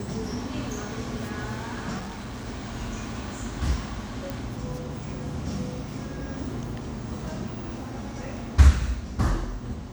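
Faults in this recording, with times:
1.98–2.46 s: clipped -32.5 dBFS
4.30 s: pop

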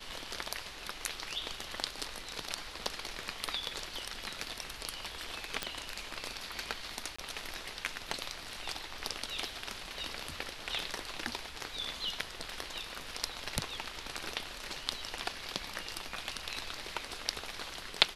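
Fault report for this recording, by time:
5.63 s: pop -16 dBFS
7.16–7.18 s: dropout 25 ms

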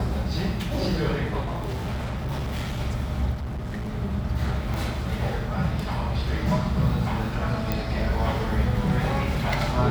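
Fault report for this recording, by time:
1.40–2.81 s: clipped -25 dBFS
3.33–3.90 s: clipped -27.5 dBFS
4.74 s: pop
7.72 s: pop -11 dBFS

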